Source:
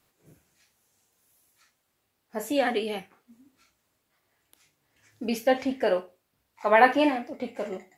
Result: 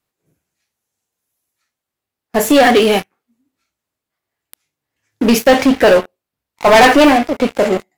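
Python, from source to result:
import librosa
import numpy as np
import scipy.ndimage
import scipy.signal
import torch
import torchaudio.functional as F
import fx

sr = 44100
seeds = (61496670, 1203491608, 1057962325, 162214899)

y = fx.leveller(x, sr, passes=5)
y = F.gain(torch.from_numpy(y), 2.0).numpy()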